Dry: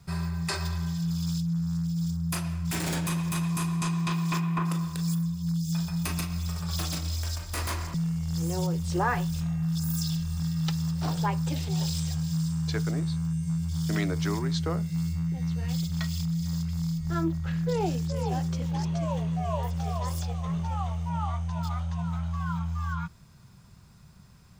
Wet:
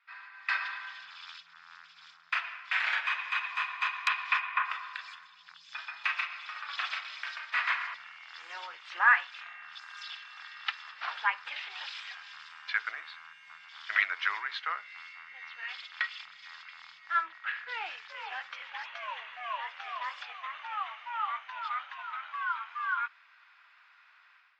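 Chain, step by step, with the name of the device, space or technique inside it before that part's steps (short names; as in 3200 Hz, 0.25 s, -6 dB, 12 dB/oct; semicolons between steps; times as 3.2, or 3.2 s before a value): HPF 1400 Hz 24 dB/oct; action camera in a waterproof case (LPF 2600 Hz 24 dB/oct; AGC gain up to 12 dB; AAC 48 kbps 44100 Hz)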